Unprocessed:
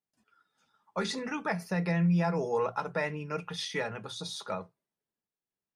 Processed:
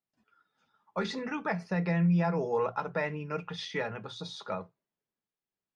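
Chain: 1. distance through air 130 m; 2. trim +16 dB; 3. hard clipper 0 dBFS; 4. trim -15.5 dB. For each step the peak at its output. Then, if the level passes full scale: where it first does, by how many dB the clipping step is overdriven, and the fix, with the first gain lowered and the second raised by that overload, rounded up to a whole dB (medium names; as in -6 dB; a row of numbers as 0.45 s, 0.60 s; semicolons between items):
-19.0 dBFS, -3.0 dBFS, -3.0 dBFS, -18.5 dBFS; nothing clips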